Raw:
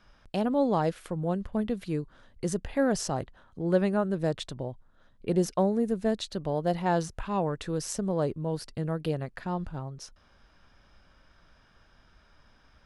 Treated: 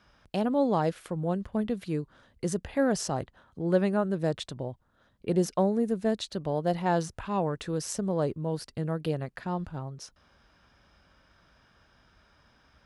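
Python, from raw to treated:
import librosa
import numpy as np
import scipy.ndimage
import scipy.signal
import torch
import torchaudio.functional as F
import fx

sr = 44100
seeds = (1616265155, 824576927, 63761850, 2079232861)

y = scipy.signal.sosfilt(scipy.signal.butter(2, 52.0, 'highpass', fs=sr, output='sos'), x)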